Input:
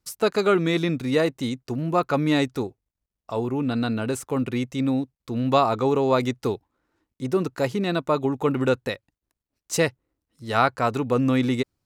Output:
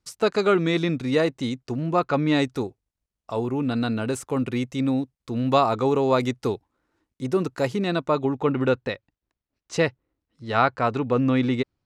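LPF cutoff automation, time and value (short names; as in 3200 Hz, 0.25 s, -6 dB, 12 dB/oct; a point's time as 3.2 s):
1.8 s 7700 Hz
2.28 s 4600 Hz
2.5 s 11000 Hz
7.73 s 11000 Hz
8.45 s 4200 Hz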